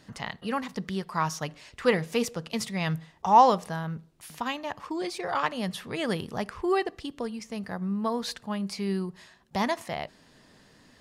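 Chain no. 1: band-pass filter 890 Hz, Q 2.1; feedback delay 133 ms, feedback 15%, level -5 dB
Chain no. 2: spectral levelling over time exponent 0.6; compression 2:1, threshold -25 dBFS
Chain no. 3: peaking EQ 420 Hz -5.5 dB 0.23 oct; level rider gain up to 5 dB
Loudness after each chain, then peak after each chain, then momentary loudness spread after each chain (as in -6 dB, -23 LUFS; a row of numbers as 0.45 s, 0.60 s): -30.5 LUFS, -29.0 LUFS, -25.0 LUFS; -8.0 dBFS, -10.5 dBFS, -3.5 dBFS; 19 LU, 7 LU, 11 LU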